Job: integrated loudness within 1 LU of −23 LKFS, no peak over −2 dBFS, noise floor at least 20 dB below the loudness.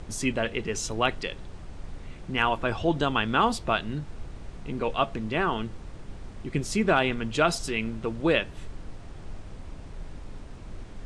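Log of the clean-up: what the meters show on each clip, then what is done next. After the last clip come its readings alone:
background noise floor −43 dBFS; target noise floor −48 dBFS; integrated loudness −27.5 LKFS; sample peak −9.0 dBFS; target loudness −23.0 LKFS
→ noise reduction from a noise print 6 dB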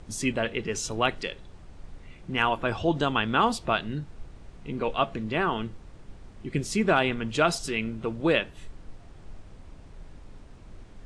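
background noise floor −49 dBFS; integrated loudness −27.5 LKFS; sample peak −9.0 dBFS; target loudness −23.0 LKFS
→ level +4.5 dB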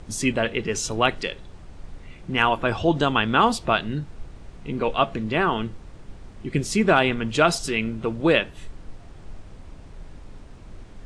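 integrated loudness −23.0 LKFS; sample peak −4.5 dBFS; background noise floor −44 dBFS

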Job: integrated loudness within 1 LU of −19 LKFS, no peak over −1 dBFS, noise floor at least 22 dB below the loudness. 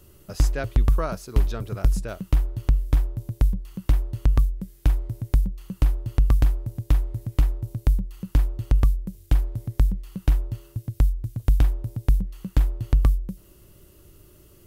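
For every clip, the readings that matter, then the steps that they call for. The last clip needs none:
integrated loudness −25.5 LKFS; sample peak −8.5 dBFS; target loudness −19.0 LKFS
→ level +6.5 dB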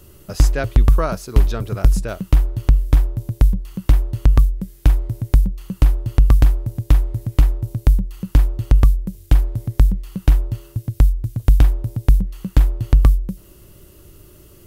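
integrated loudness −19.0 LKFS; sample peak −2.0 dBFS; background noise floor −47 dBFS

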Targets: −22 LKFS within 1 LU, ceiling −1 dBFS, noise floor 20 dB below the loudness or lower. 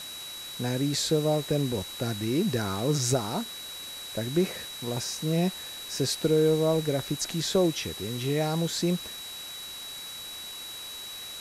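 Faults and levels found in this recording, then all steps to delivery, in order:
interfering tone 3,900 Hz; level of the tone −39 dBFS; background noise floor −40 dBFS; target noise floor −49 dBFS; integrated loudness −29.0 LKFS; sample peak −14.0 dBFS; target loudness −22.0 LKFS
→ notch filter 3,900 Hz, Q 30
noise reduction from a noise print 9 dB
level +7 dB

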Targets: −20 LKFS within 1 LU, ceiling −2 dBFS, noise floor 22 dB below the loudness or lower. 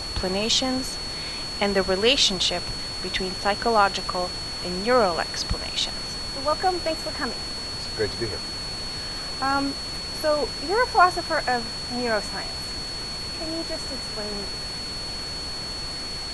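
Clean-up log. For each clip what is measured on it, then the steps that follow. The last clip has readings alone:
interfering tone 4,400 Hz; level of the tone −31 dBFS; background noise floor −32 dBFS; target noise floor −47 dBFS; integrated loudness −25.0 LKFS; sample peak −5.0 dBFS; target loudness −20.0 LKFS
→ notch filter 4,400 Hz, Q 30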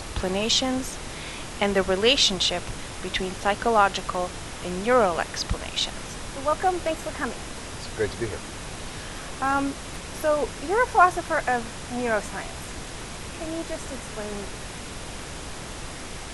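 interfering tone none found; background noise floor −37 dBFS; target noise floor −48 dBFS
→ noise reduction from a noise print 11 dB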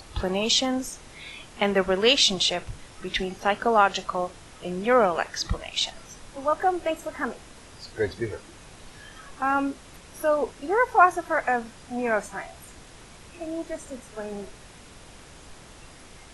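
background noise floor −48 dBFS; integrated loudness −25.0 LKFS; sample peak −5.5 dBFS; target loudness −20.0 LKFS
→ level +5 dB
brickwall limiter −2 dBFS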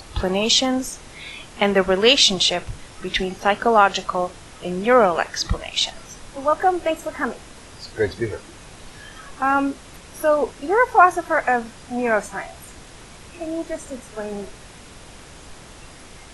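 integrated loudness −20.0 LKFS; sample peak −2.0 dBFS; background noise floor −43 dBFS

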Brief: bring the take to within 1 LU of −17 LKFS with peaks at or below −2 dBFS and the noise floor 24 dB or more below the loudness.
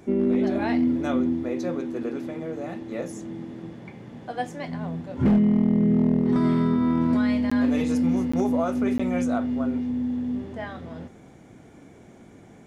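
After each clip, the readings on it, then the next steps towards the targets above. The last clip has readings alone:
share of clipped samples 0.6%; peaks flattened at −14.5 dBFS; number of dropouts 3; longest dropout 15 ms; integrated loudness −24.0 LKFS; sample peak −14.5 dBFS; target loudness −17.0 LKFS
→ clipped peaks rebuilt −14.5 dBFS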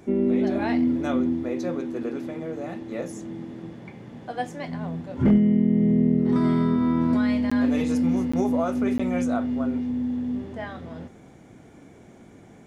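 share of clipped samples 0.0%; number of dropouts 3; longest dropout 15 ms
→ repair the gap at 0:07.50/0:08.32/0:08.98, 15 ms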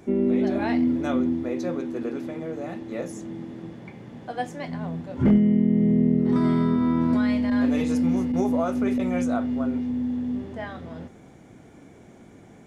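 number of dropouts 0; integrated loudness −24.0 LKFS; sample peak −9.5 dBFS; target loudness −17.0 LKFS
→ level +7 dB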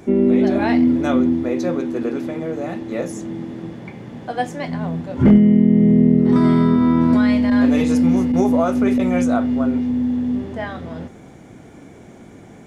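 integrated loudness −17.0 LKFS; sample peak −2.5 dBFS; background noise floor −42 dBFS

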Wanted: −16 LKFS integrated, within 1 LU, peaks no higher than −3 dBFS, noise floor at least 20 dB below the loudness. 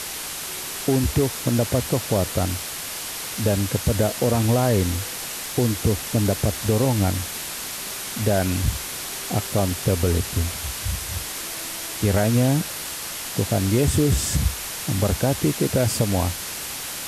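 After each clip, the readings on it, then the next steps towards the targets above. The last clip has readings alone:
background noise floor −32 dBFS; target noise floor −43 dBFS; integrated loudness −23.0 LKFS; sample peak −7.5 dBFS; target loudness −16.0 LKFS
→ broadband denoise 11 dB, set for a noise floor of −32 dBFS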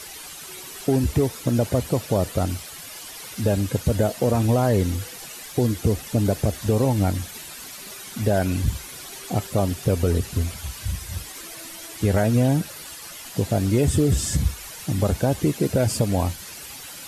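background noise floor −39 dBFS; target noise floor −44 dBFS
→ broadband denoise 6 dB, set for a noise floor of −39 dBFS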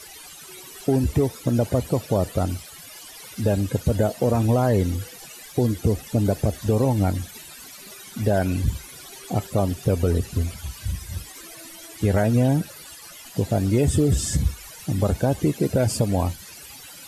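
background noise floor −43 dBFS; target noise floor −44 dBFS
→ broadband denoise 6 dB, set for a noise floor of −43 dBFS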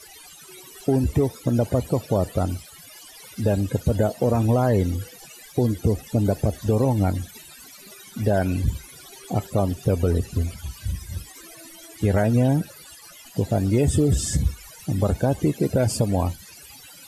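background noise floor −46 dBFS; integrated loudness −23.5 LKFS; sample peak −8.5 dBFS; target loudness −16.0 LKFS
→ level +7.5 dB
brickwall limiter −3 dBFS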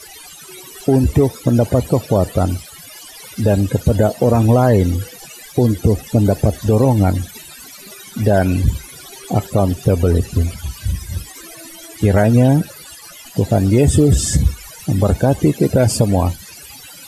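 integrated loudness −16.0 LKFS; sample peak −3.0 dBFS; background noise floor −38 dBFS

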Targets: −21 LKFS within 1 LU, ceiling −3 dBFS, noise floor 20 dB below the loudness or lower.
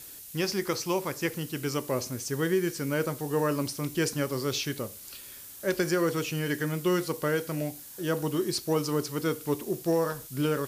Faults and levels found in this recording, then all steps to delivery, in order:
background noise floor −46 dBFS; target noise floor −50 dBFS; integrated loudness −30.0 LKFS; sample peak −14.5 dBFS; target loudness −21.0 LKFS
→ noise reduction from a noise print 6 dB
level +9 dB

